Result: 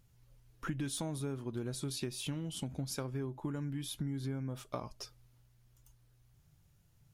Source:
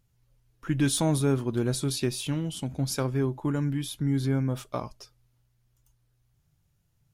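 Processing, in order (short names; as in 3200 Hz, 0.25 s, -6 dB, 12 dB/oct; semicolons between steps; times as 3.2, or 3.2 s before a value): compressor 6:1, threshold -39 dBFS, peak gain reduction 18.5 dB; gain +3 dB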